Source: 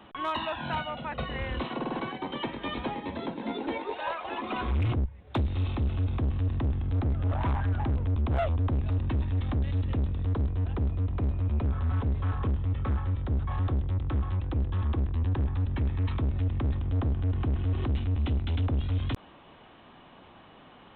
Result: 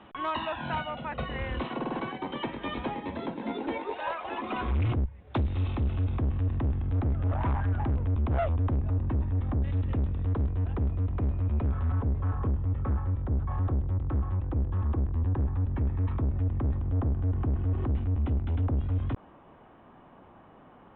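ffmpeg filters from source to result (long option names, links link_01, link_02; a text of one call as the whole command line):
ffmpeg -i in.wav -af "asetnsamples=nb_out_samples=441:pad=0,asendcmd='6.18 lowpass f 2400;8.76 lowpass f 1400;9.64 lowpass f 2400;11.92 lowpass f 1400',lowpass=3200" out.wav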